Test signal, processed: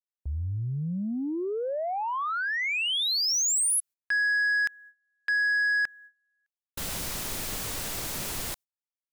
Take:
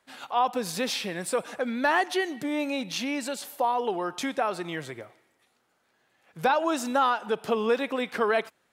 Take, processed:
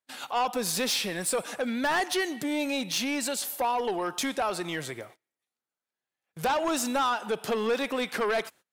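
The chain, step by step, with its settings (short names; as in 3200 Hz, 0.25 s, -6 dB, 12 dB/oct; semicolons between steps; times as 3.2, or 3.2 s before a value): gate -50 dBFS, range -26 dB; high shelf 4000 Hz +9 dB; soft clip -22.5 dBFS; gain +1 dB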